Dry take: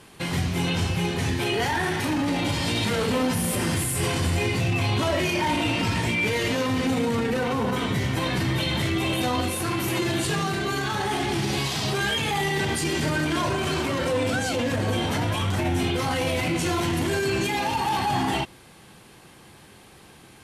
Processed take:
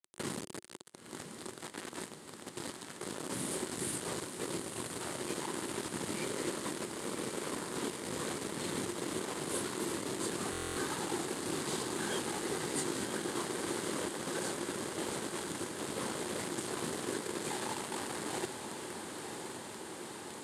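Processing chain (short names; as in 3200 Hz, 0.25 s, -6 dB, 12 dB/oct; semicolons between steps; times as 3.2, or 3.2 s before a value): bell 2800 Hz -12.5 dB 1.2 oct; notches 60/120/180/240 Hz; limiter -27.5 dBFS, peak gain reduction 12.5 dB; negative-ratio compressor -38 dBFS, ratio -0.5; whisperiser; modulation noise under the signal 10 dB; 0.59–3.01 flange 1.5 Hz, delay 2.1 ms, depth 5 ms, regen -41%; bit-crush 6-bit; speaker cabinet 160–9900 Hz, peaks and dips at 360 Hz +6 dB, 710 Hz -5 dB, 2500 Hz -4 dB, 5700 Hz -6 dB, 8700 Hz +4 dB; diffused feedback echo 1.007 s, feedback 78%, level -7 dB; stuck buffer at 10.51, samples 1024, times 10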